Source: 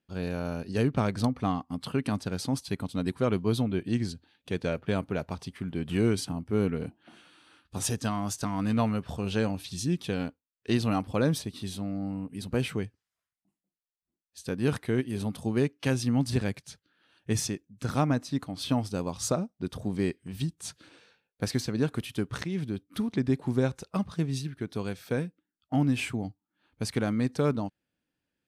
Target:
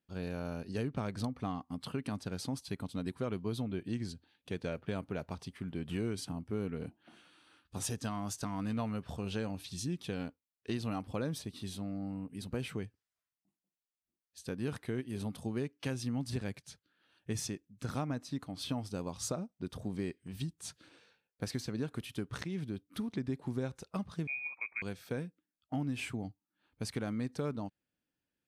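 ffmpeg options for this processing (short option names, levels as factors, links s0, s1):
-filter_complex "[0:a]asettb=1/sr,asplit=3[s0][s1][s2];[s0]atrim=end=24.274[s3];[s1]atrim=start=24.27:end=24.82,asetpts=PTS-STARTPTS,afade=t=in:d=0.004:c=qsin,afade=t=out:st=0.546:d=0.004:c=qsin,lowpass=f=2200:t=q:w=0.5098,lowpass=f=2200:t=q:w=0.6013,lowpass=f=2200:t=q:w=0.9,lowpass=f=2200:t=q:w=2.563,afreqshift=-2600[s4];[s2]atrim=start=24.816[s5];[s3][s4]acrossfade=d=0.004:c1=hsin:c2=qsin[s6];[s6][s5]acrossfade=d=0.004:c1=qsin:c2=hsin,acompressor=threshold=0.0398:ratio=2.5,volume=0.531"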